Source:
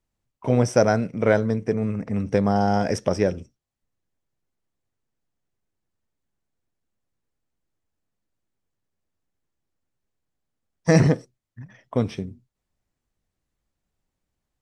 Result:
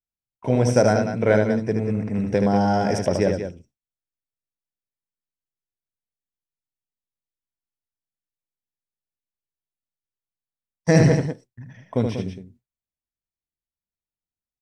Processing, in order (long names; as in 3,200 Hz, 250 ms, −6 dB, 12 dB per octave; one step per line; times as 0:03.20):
notch filter 1,200 Hz, Q 5.5
on a send: loudspeakers that aren't time-aligned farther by 26 metres −5 dB, 65 metres −9 dB
on the sum: noise gate with hold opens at −42 dBFS